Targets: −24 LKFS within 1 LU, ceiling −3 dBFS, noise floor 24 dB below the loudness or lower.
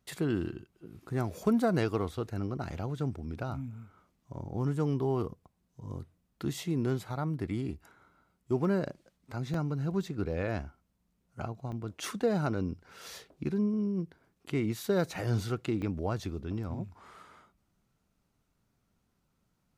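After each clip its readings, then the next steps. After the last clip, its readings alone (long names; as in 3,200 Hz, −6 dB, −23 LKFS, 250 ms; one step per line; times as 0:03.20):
number of dropouts 3; longest dropout 2.8 ms; integrated loudness −33.5 LKFS; sample peak −16.0 dBFS; target loudness −24.0 LKFS
→ repair the gap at 0:09.54/0:11.72/0:15.82, 2.8 ms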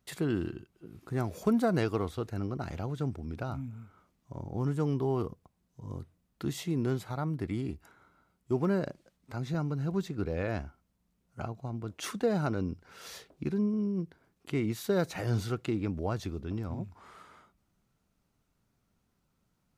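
number of dropouts 0; integrated loudness −33.5 LKFS; sample peak −16.0 dBFS; target loudness −24.0 LKFS
→ level +9.5 dB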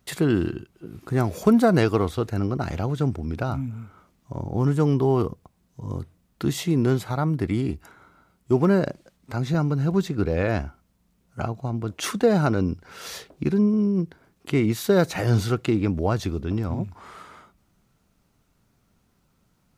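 integrated loudness −24.0 LKFS; sample peak −6.5 dBFS; background noise floor −67 dBFS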